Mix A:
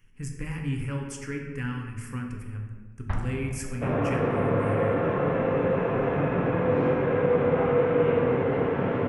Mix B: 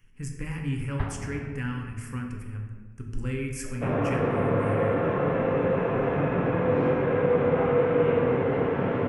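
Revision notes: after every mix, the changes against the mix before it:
first sound: entry -2.10 s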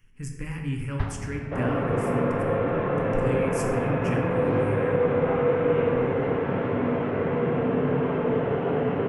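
first sound: add tone controls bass +2 dB, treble +12 dB; second sound: entry -2.30 s

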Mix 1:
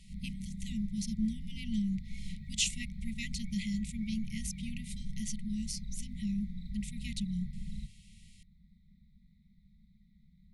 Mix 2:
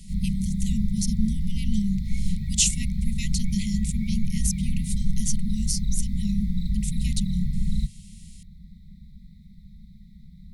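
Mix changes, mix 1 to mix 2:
background +8.0 dB; master: add tone controls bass +9 dB, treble +14 dB

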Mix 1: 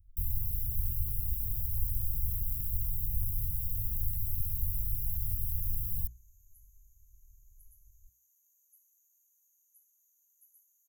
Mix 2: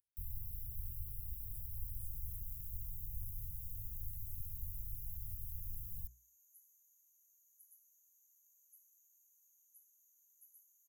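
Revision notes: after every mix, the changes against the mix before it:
speech: add high-pass 980 Hz; first sound -12.0 dB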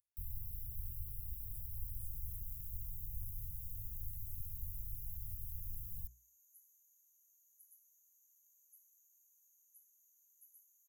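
no change

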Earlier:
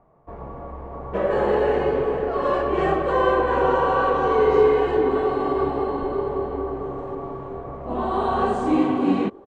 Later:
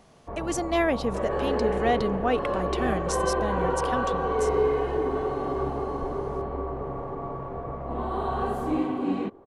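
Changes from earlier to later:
speech: unmuted; second sound -8.0 dB; master: remove Chebyshev low-pass 8.9 kHz, order 6

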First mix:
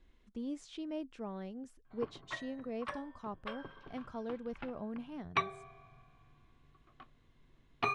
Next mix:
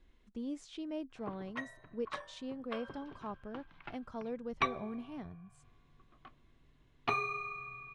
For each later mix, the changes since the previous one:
background: entry -0.75 s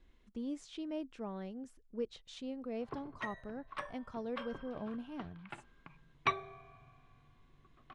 background: entry +1.65 s

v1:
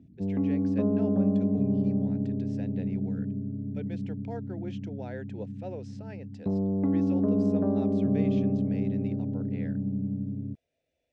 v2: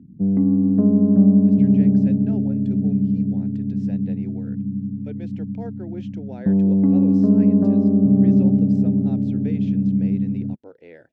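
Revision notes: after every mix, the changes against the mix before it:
speech: entry +1.30 s; master: add peaking EQ 190 Hz +12.5 dB 1.4 oct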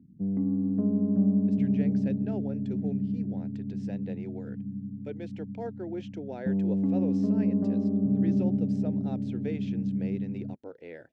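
background -10.5 dB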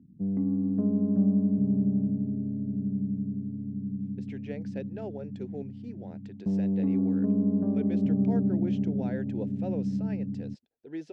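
speech: entry +2.70 s

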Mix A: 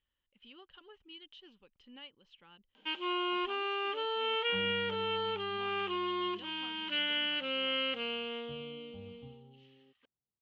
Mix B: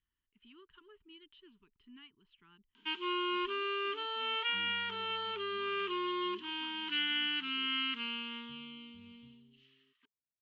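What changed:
speech: add distance through air 340 m; second sound -11.0 dB; master: add Chebyshev band-stop 420–920 Hz, order 4

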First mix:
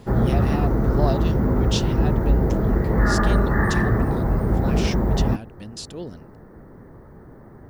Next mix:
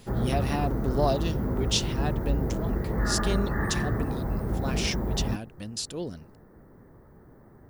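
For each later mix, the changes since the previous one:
background -8.5 dB; master: add treble shelf 8.5 kHz +9.5 dB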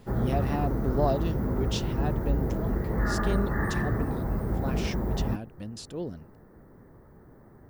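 speech: add treble shelf 2.2 kHz -12 dB

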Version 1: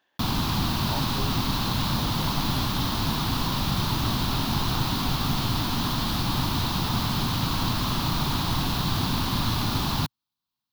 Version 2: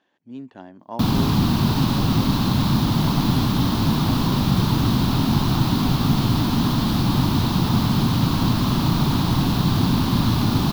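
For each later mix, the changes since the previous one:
background: entry +0.80 s; master: add peaking EQ 210 Hz +10 dB 2.9 oct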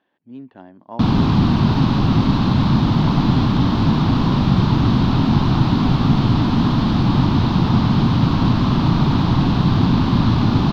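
background +4.0 dB; master: add distance through air 200 m

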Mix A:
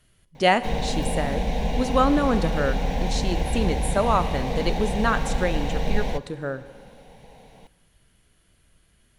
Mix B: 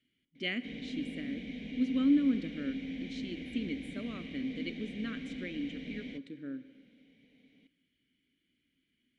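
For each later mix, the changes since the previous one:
master: add vowel filter i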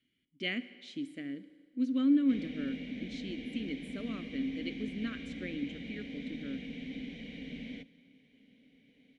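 background: entry +1.65 s

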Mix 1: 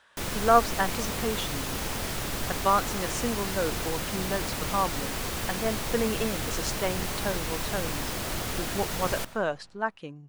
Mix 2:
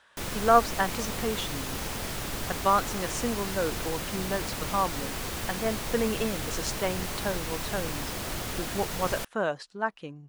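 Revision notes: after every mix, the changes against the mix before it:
reverb: off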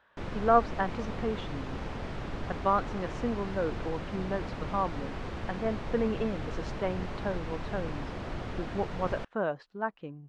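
master: add tape spacing loss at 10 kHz 34 dB

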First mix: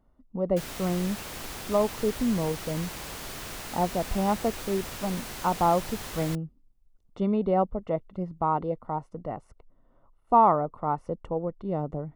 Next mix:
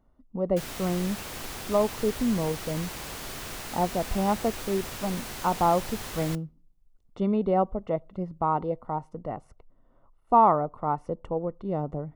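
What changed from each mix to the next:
reverb: on, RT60 0.45 s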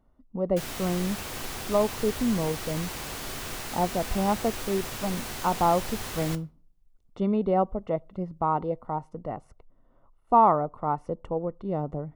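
background: send +11.0 dB

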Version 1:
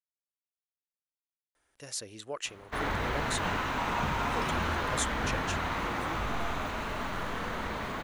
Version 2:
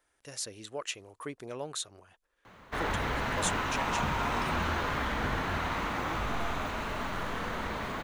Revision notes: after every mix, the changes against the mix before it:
speech: entry -1.55 s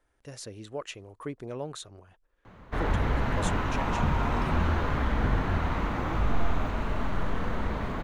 master: add tilt EQ -2.5 dB/octave

